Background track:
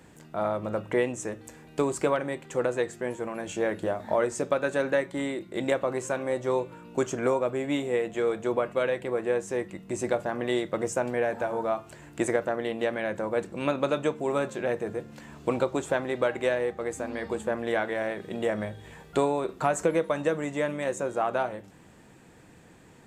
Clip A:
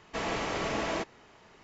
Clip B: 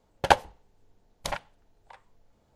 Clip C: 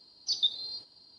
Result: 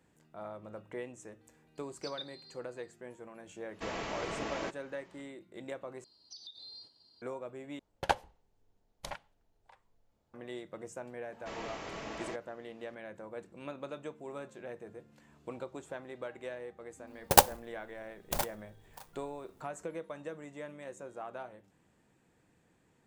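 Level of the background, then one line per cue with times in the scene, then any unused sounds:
background track -16 dB
1.75 add C -17 dB
3.67 add A -6.5 dB, fades 0.10 s
6.04 replace with C -7.5 dB + compressor 20:1, threshold -38 dBFS
7.79 replace with B -10 dB
11.32 add A -10.5 dB
17.07 add B -0.5 dB + clock jitter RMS 0.12 ms

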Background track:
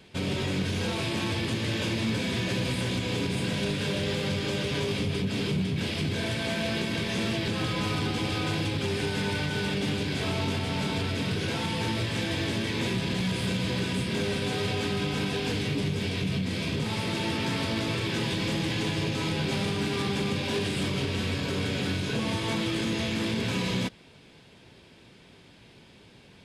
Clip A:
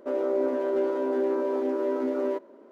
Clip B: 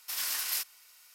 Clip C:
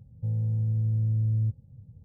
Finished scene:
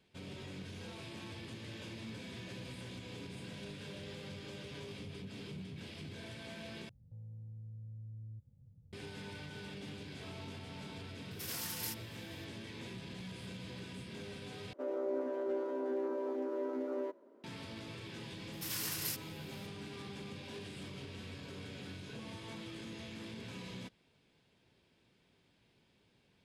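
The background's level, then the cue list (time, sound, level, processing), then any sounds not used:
background track -18 dB
6.89 replace with C -11 dB + compressor 2:1, threshold -45 dBFS
11.31 add B -9 dB
14.73 replace with A -10.5 dB
18.53 add B -6.5 dB

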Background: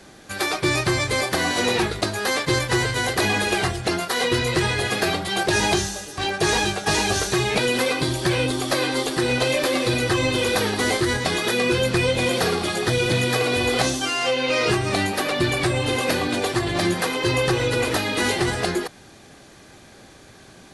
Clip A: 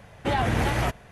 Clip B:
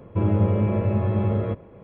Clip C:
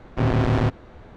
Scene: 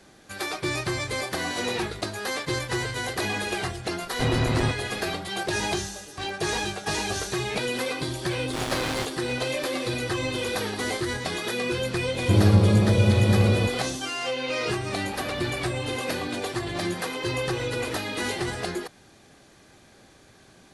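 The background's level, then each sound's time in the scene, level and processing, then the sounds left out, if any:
background -7 dB
4.02 add C -4.5 dB
8.36 add C -11.5 dB + spectral contrast lowered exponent 0.43
12.13 add B -2.5 dB + low shelf 450 Hz +6 dB
14.79 add A -15 dB

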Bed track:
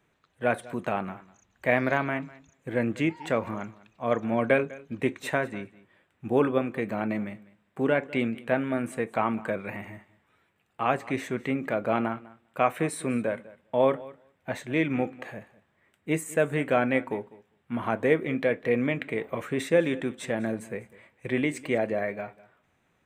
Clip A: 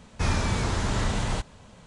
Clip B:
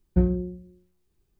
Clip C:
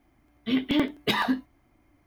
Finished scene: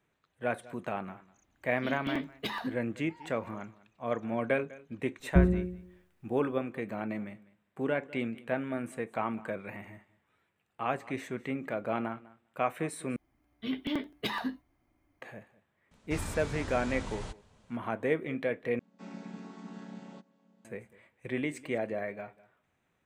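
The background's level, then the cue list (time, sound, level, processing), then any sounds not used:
bed track -6.5 dB
1.36 add C -10 dB + vocal rider
5.19 add B -1.5 dB
13.16 replace with C -9 dB
15.91 add A -13 dB
18.79 replace with A -15.5 dB + chord vocoder minor triad, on F#3

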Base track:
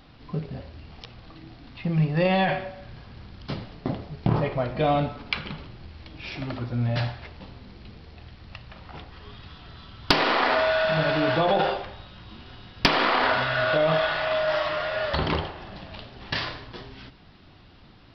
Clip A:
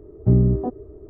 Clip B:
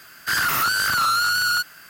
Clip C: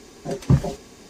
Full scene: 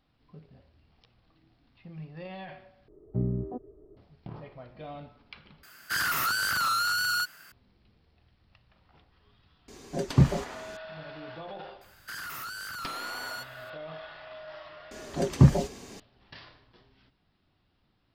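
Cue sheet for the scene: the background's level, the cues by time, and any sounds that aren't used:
base track -20 dB
2.88 replace with A -11.5 dB + bell 77 Hz -13.5 dB 0.51 oct
5.63 replace with B -7 dB
9.68 add C -3 dB
11.81 add B -13.5 dB + compressor, threshold -22 dBFS
14.91 add C

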